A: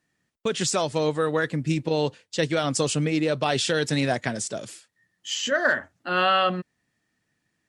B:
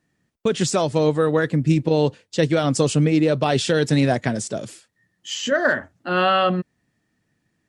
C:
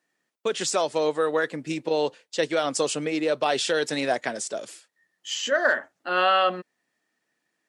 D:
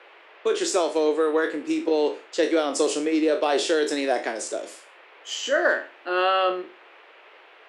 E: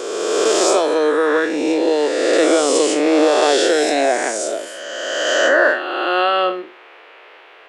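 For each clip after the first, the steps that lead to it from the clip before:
tilt shelf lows +4 dB, about 670 Hz; trim +4 dB
high-pass 470 Hz 12 dB/octave; trim -1.5 dB
spectral sustain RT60 0.34 s; band noise 430–2800 Hz -49 dBFS; ladder high-pass 290 Hz, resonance 55%; trim +7.5 dB
reverse spectral sustain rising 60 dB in 2.15 s; trim +3.5 dB

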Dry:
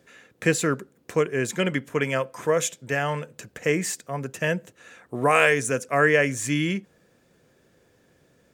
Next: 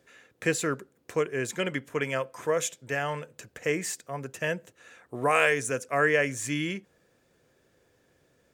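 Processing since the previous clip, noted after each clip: peaking EQ 190 Hz -5 dB 0.96 oct; trim -4 dB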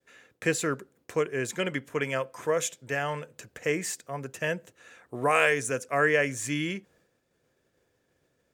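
expander -60 dBFS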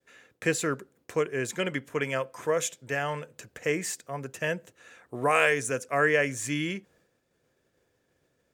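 no audible change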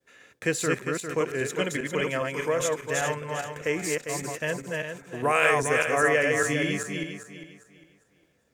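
backward echo that repeats 201 ms, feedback 52%, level -2 dB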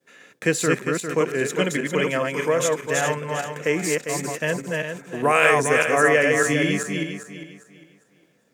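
resonant low shelf 110 Hz -13.5 dB, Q 1.5; trim +4.5 dB

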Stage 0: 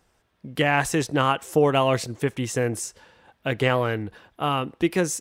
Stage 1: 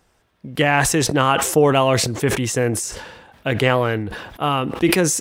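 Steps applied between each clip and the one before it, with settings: decay stretcher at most 48 dB/s; trim +4 dB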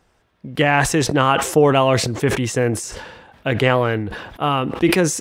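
treble shelf 6.7 kHz -8 dB; trim +1 dB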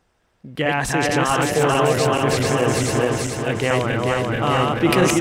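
backward echo that repeats 218 ms, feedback 77%, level -1 dB; level rider; trim -4.5 dB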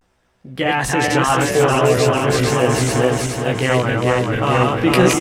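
vibrato 0.39 Hz 51 cents; doubling 16 ms -4 dB; trim +1 dB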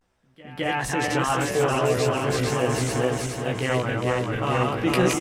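pre-echo 212 ms -20 dB; trim -7.5 dB; Vorbis 192 kbps 44.1 kHz

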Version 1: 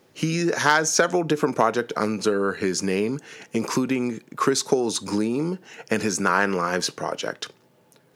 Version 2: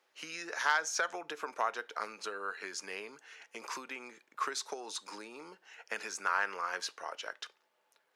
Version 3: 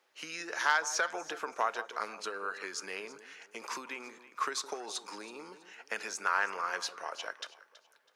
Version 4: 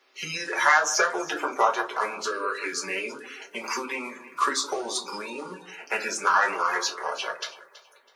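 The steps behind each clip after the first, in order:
high-pass 940 Hz 12 dB/octave; treble shelf 5.2 kHz -9.5 dB; trim -8 dB
echo whose repeats swap between lows and highs 163 ms, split 1.1 kHz, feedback 53%, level -11.5 dB; trim +1.5 dB
coarse spectral quantiser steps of 30 dB; reverberation RT60 0.25 s, pre-delay 4 ms, DRR -1 dB; trim +6.5 dB

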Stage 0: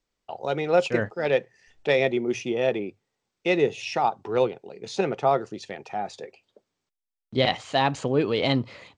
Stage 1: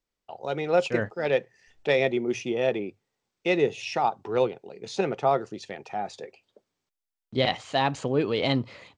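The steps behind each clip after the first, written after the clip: level rider gain up to 4.5 dB; trim -5.5 dB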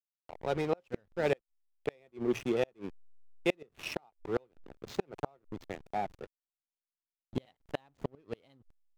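hysteresis with a dead band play -30 dBFS; inverted gate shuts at -16 dBFS, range -37 dB; trim -1.5 dB

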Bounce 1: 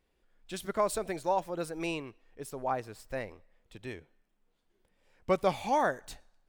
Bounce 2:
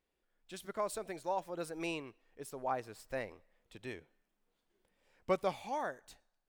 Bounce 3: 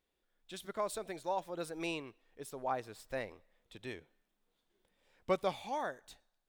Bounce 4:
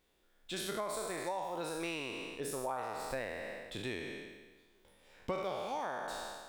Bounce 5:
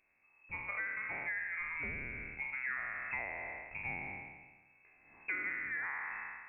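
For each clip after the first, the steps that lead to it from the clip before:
bass shelf 140 Hz -7 dB; gain riding within 4 dB 0.5 s; trim -6 dB
peaking EQ 3.6 kHz +6 dB 0.28 oct
spectral sustain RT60 1.28 s; compression 5:1, threshold -43 dBFS, peak gain reduction 16.5 dB; trim +7 dB
in parallel at -9.5 dB: sine folder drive 5 dB, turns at -23 dBFS; on the sum: frequency inversion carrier 2.6 kHz; trim -6 dB

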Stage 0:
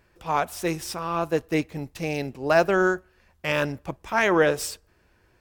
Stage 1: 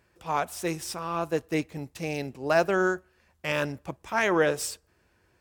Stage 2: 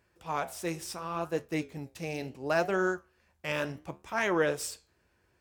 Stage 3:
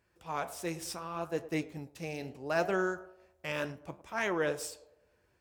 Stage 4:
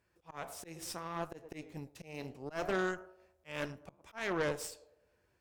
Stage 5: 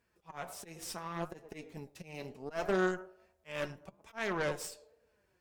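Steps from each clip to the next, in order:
high-pass 55 Hz; peaking EQ 8.1 kHz +3.5 dB 0.89 oct; trim -3.5 dB
flange 0.71 Hz, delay 9.9 ms, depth 8.3 ms, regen -73%
band-passed feedback delay 105 ms, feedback 53%, band-pass 590 Hz, level -15 dB; random flutter of the level, depth 50%
slow attack 193 ms; Chebyshev shaper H 6 -17 dB, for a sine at -19 dBFS; trim -3 dB
flange 1.2 Hz, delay 4.2 ms, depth 1.5 ms, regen +42%; trim +4.5 dB

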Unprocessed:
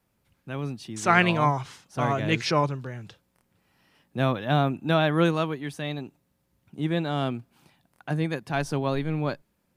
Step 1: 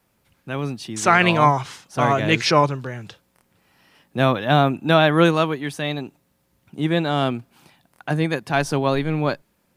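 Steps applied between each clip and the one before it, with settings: bass shelf 250 Hz -5 dB; loudness maximiser +9 dB; trim -1 dB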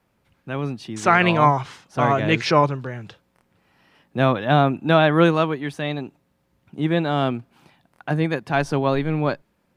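treble shelf 5 kHz -11.5 dB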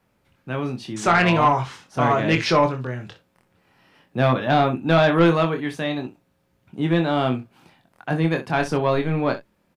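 on a send: early reflections 24 ms -6 dB, 62 ms -13.5 dB; on the sum: saturation -7.5 dBFS, distortion -16 dB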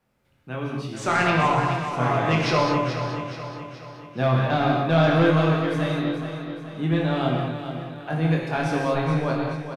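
feedback delay 427 ms, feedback 50%, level -9 dB; gated-style reverb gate 250 ms flat, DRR -0.5 dB; trim -6 dB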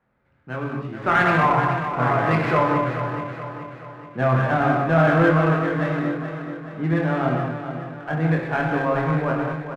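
four-pole ladder low-pass 2.2 kHz, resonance 35%; sliding maximum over 3 samples; trim +8.5 dB

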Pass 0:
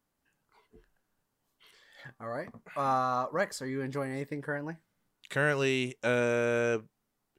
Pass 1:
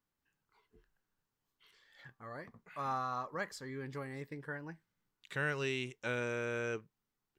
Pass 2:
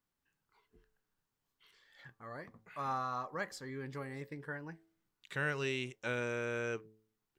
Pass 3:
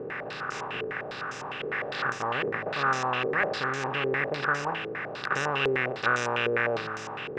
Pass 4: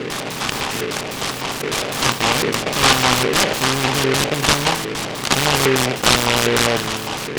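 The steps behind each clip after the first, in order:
fifteen-band graphic EQ 250 Hz -4 dB, 630 Hz -7 dB, 10 kHz -7 dB; trim -6 dB
de-hum 109 Hz, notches 7
spectral levelling over time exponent 0.2; step-sequenced low-pass 9.9 Hz 440–6300 Hz
ten-band graphic EQ 125 Hz +7 dB, 250 Hz +10 dB, 1 kHz +9 dB, 8 kHz +11 dB; delay time shaken by noise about 1.8 kHz, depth 0.19 ms; trim +5 dB

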